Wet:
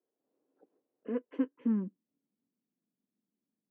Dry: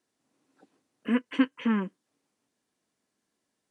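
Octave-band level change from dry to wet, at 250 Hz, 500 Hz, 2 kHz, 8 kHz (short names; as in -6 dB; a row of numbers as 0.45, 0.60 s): -6.0 dB, -3.0 dB, -20.0 dB, n/a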